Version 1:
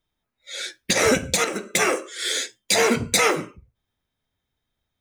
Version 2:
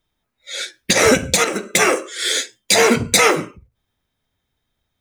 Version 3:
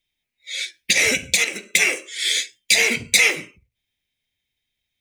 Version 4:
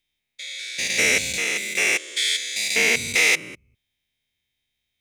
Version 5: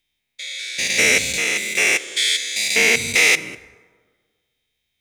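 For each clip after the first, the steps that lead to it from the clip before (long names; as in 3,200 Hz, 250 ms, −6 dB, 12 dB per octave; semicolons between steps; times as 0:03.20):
every ending faded ahead of time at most 260 dB per second; level +5.5 dB
high shelf with overshoot 1,700 Hz +9.5 dB, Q 3; level −12.5 dB
spectrum averaged block by block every 200 ms; level +2 dB
dense smooth reverb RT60 1.6 s, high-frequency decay 0.5×, DRR 16 dB; level +3.5 dB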